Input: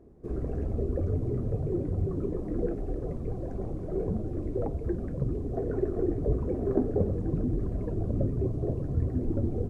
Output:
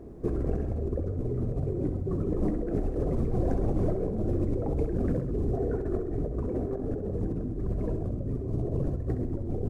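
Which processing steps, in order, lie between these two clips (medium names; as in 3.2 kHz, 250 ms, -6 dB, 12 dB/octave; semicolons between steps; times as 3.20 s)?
compressor with a negative ratio -35 dBFS, ratio -1; feedback delay 66 ms, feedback 57%, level -9 dB; trim +5 dB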